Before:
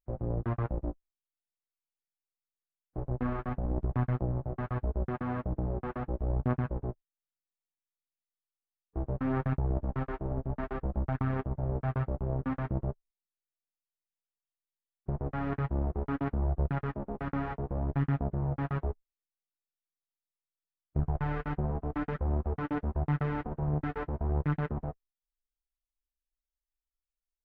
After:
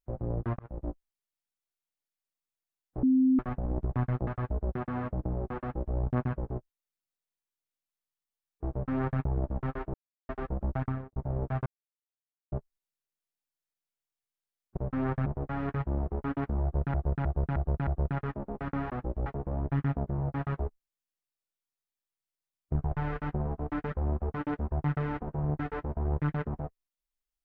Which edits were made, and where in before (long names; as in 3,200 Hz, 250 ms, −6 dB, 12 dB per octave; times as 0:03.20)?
0:00.59–0:00.90: fade in
0:03.03–0:03.39: beep over 260 Hz −19.5 dBFS
0:04.27–0:04.60: remove
0:05.94–0:06.30: duplicate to 0:17.50
0:09.05–0:09.54: duplicate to 0:15.10
0:10.27–0:10.62: silence
0:11.14–0:11.49: fade out and dull
0:11.99–0:12.85: silence
0:16.47–0:16.78: repeat, 5 plays